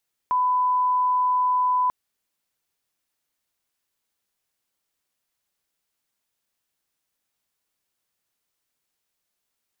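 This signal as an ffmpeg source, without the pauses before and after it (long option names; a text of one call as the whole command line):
ffmpeg -f lavfi -i "sine=frequency=1000:duration=1.59:sample_rate=44100,volume=0.06dB" out.wav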